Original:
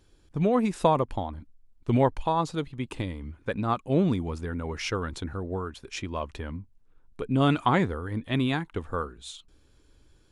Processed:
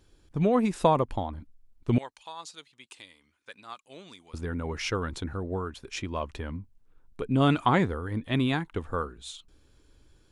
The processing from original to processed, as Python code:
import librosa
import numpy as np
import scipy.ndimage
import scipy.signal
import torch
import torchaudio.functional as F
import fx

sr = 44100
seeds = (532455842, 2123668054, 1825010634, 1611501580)

y = fx.bandpass_q(x, sr, hz=6600.0, q=0.79, at=(1.98, 4.34))